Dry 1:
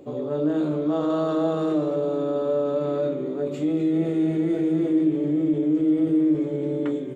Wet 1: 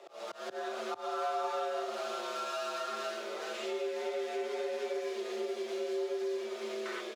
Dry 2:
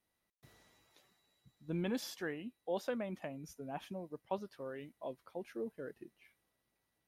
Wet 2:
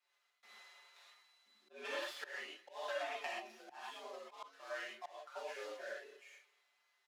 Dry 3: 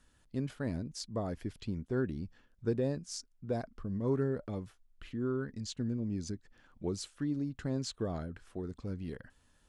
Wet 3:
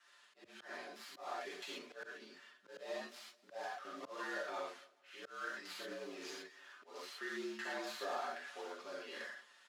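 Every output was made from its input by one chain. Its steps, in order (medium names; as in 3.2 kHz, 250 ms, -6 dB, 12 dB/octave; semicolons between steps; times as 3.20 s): dead-time distortion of 0.093 ms; high-pass 990 Hz 12 dB/octave; distance through air 53 m; comb 6.2 ms, depth 57%; gated-style reverb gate 150 ms flat, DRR -6.5 dB; slow attack 331 ms; compression 3:1, threshold -40 dBFS; peaking EQ 8.6 kHz -5 dB 0.59 oct; on a send: feedback delay 216 ms, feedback 33%, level -22.5 dB; on the sum: frequency shift +74 Hz; trim +3 dB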